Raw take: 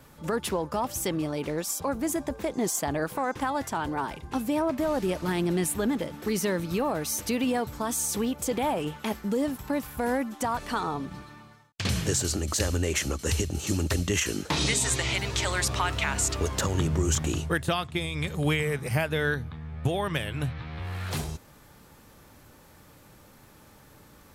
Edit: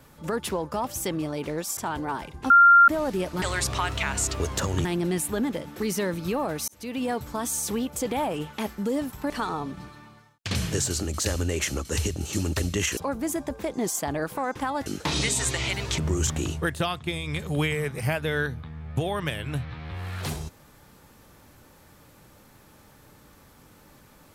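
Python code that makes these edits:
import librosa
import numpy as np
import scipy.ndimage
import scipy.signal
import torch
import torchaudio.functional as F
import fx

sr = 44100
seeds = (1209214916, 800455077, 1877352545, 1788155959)

y = fx.edit(x, sr, fx.move(start_s=1.77, length_s=1.89, to_s=14.31),
    fx.bleep(start_s=4.39, length_s=0.38, hz=1390.0, db=-10.5),
    fx.fade_in_span(start_s=7.14, length_s=0.45),
    fx.cut(start_s=9.76, length_s=0.88),
    fx.move(start_s=15.43, length_s=1.43, to_s=5.31), tone=tone)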